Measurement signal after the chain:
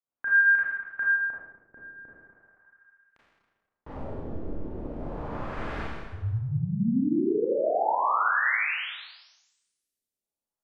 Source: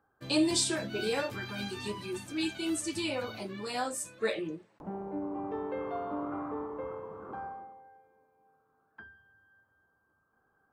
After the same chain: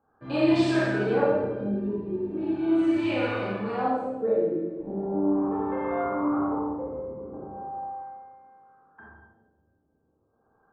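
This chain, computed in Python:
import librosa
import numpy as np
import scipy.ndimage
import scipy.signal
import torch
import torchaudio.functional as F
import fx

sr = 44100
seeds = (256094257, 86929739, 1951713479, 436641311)

y = fx.rev_schroeder(x, sr, rt60_s=1.5, comb_ms=27, drr_db=-7.5)
y = fx.filter_lfo_lowpass(y, sr, shape='sine', hz=0.38, low_hz=390.0, high_hz=1900.0, q=1.2)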